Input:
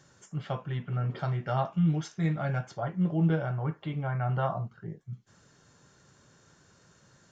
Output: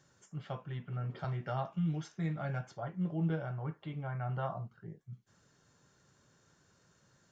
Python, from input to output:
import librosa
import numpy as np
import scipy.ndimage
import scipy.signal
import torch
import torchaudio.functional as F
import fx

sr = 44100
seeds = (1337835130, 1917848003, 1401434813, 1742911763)

y = fx.band_squash(x, sr, depth_pct=40, at=(1.24, 2.71))
y = y * librosa.db_to_amplitude(-7.5)